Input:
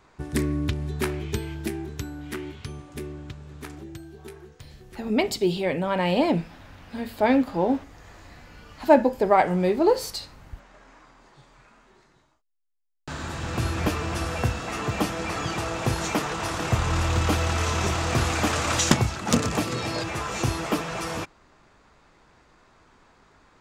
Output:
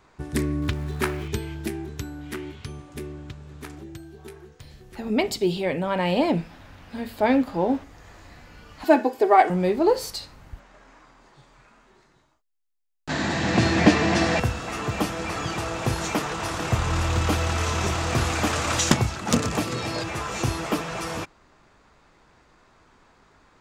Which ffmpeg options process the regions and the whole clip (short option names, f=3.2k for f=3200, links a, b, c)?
-filter_complex "[0:a]asettb=1/sr,asplit=3[a][b][c];[a]atrim=end=0.624[d];[b]atrim=start=0.62:end=1.28,asetpts=PTS-STARTPTS,afade=t=in:d=0.004:c=qsin,afade=t=out:st=0.656:d=0.004:c=qsin,aeval=exprs='val(0)*gte(abs(val(0)),0.00708)':c=same,equalizer=f=1.3k:w=0.9:g=5.5[e];[c]atrim=start=1.276[f];[d][e]acrossfade=d=0.004:c1=hsin:c2=qsin[g];[g][f]acrossfade=d=0.004:c1=qsin:c2=hsin,asettb=1/sr,asplit=3[h][i][j];[h]atrim=end=8.844[k];[i]atrim=start=8.84:end=9.5,asetpts=PTS-STARTPTS,afade=t=in:d=0.004:c=qsin,afade=t=out:st=0.656:d=0.004:c=qsin,highpass=260,aecho=1:1:2.7:0.82,atrim=end_sample=29106[l];[j]atrim=start=9.496[m];[k][l]acrossfade=d=0.004:c1=hsin:c2=qsin[n];[n][m]acrossfade=d=0.004:c1=qsin:c2=hsin,asettb=1/sr,asplit=3[o][p][q];[o]atrim=end=13.094[r];[p]atrim=start=13.09:end=14.4,asetpts=PTS-STARTPTS,afade=t=in:d=0.004:c=qsin,afade=t=out:st=1.306:d=0.004:c=qsin,acontrast=73,highpass=120,equalizer=f=200:t=q:w=4:g=8,equalizer=f=300:t=q:w=4:g=5,equalizer=f=700:t=q:w=4:g=5,equalizer=f=1.3k:t=q:w=4:g=-6,equalizer=f=1.9k:t=q:w=4:g=8,equalizer=f=4.2k:t=q:w=4:g=4,lowpass=f=7.4k:w=0.5412,lowpass=f=7.4k:w=1.3066[s];[q]atrim=start=14.396[t];[r][s]acrossfade=d=0.004:c1=hsin:c2=qsin[u];[u][t]acrossfade=d=0.004:c1=qsin:c2=hsin"